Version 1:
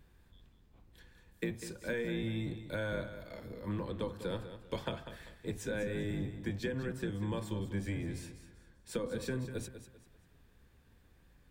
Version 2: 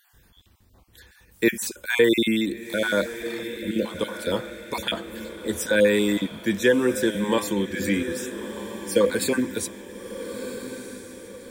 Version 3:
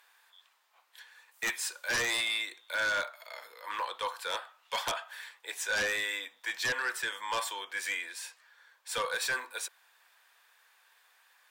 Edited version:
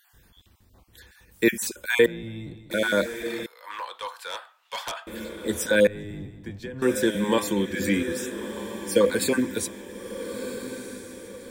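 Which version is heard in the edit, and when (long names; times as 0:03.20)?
2
0:02.06–0:02.71: punch in from 1
0:03.46–0:05.07: punch in from 3
0:05.87–0:06.82: punch in from 1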